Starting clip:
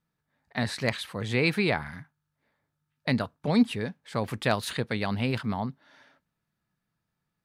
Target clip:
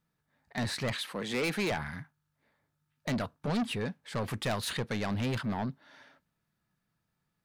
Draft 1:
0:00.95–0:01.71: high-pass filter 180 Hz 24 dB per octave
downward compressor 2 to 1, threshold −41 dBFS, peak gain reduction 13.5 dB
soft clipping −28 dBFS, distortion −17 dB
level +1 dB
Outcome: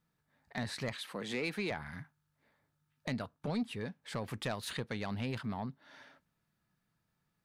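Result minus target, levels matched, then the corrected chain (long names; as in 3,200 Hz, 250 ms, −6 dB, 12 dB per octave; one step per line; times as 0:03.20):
downward compressor: peak gain reduction +13.5 dB
0:00.95–0:01.71: high-pass filter 180 Hz 24 dB per octave
soft clipping −28 dBFS, distortion −6 dB
level +1 dB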